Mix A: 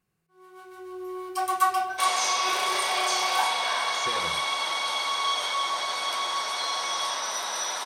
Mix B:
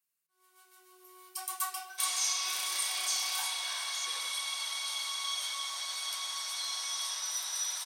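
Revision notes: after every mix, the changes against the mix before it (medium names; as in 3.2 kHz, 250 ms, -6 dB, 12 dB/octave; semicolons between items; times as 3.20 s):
master: add differentiator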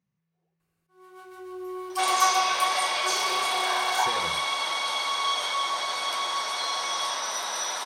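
first sound: entry +0.60 s; master: remove differentiator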